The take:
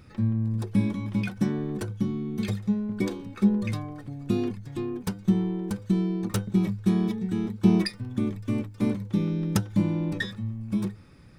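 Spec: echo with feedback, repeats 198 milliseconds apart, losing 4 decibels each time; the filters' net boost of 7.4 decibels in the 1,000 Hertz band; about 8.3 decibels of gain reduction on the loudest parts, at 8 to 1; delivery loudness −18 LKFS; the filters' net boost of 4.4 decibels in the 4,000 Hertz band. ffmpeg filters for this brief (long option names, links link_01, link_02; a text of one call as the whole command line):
ffmpeg -i in.wav -af "equalizer=frequency=1000:width_type=o:gain=9,equalizer=frequency=4000:width_type=o:gain=5,acompressor=threshold=-23dB:ratio=8,aecho=1:1:198|396|594|792|990|1188|1386|1584|1782:0.631|0.398|0.25|0.158|0.0994|0.0626|0.0394|0.0249|0.0157,volume=10dB" out.wav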